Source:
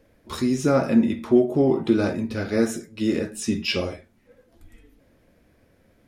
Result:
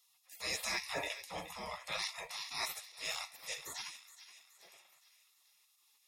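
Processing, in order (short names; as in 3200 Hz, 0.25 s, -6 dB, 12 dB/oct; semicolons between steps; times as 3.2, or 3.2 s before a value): spectral gate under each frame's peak -30 dB weak; transient shaper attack -8 dB, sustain -4 dB; notch comb 1500 Hz; on a send: thin delay 0.422 s, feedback 48%, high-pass 1500 Hz, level -12.5 dB; on the sum: gain +7.5 dB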